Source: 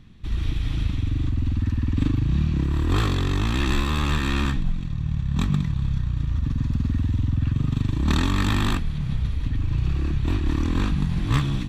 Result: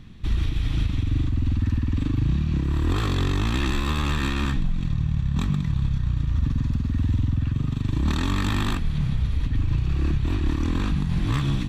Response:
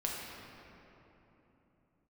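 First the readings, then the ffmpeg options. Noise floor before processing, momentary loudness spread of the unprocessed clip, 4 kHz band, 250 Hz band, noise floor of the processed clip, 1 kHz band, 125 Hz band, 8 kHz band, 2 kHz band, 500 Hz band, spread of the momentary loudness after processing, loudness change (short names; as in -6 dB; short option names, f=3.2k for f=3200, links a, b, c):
-29 dBFS, 5 LU, -1.5 dB, -1.0 dB, -28 dBFS, -1.5 dB, -0.5 dB, -1.5 dB, -1.5 dB, -1.0 dB, 2 LU, -0.5 dB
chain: -af "alimiter=limit=-19dB:level=0:latency=1:release=191,volume=4.5dB"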